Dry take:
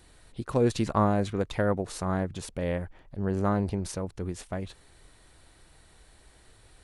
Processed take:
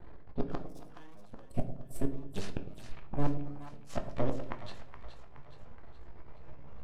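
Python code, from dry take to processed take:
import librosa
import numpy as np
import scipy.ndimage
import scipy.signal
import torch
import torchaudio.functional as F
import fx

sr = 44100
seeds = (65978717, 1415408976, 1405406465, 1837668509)

y = fx.pitch_ramps(x, sr, semitones=8.0, every_ms=1150)
y = np.maximum(y, 0.0)
y = fx.env_lowpass(y, sr, base_hz=1000.0, full_db=-30.5)
y = fx.dynamic_eq(y, sr, hz=2000.0, q=0.84, threshold_db=-50.0, ratio=4.0, max_db=-7)
y = fx.spec_box(y, sr, start_s=1.39, length_s=0.73, low_hz=730.0, high_hz=7500.0, gain_db=-16)
y = fx.gate_flip(y, sr, shuts_db=-27.0, range_db=-33)
y = fx.echo_split(y, sr, split_hz=740.0, low_ms=106, high_ms=421, feedback_pct=52, wet_db=-10)
y = fx.room_shoebox(y, sr, seeds[0], volume_m3=55.0, walls='mixed', distance_m=0.3)
y = y * 10.0 ** (8.5 / 20.0)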